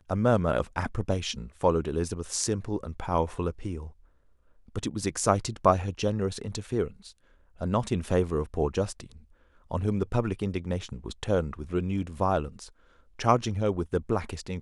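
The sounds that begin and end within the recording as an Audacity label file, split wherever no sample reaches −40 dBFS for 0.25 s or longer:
4.680000	7.110000	sound
7.610000	9.160000	sound
9.710000	12.680000	sound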